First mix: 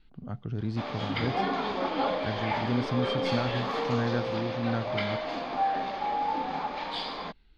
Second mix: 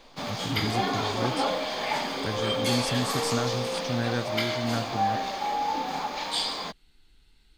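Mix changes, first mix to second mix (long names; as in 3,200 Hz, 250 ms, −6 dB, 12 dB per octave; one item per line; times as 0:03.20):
background: entry −0.60 s
master: remove high-frequency loss of the air 270 metres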